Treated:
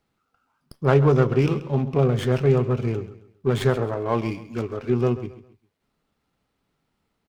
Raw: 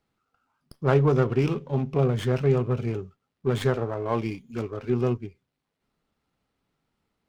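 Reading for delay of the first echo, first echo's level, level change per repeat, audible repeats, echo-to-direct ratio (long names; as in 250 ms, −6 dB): 134 ms, −15.0 dB, −9.5 dB, 3, −14.5 dB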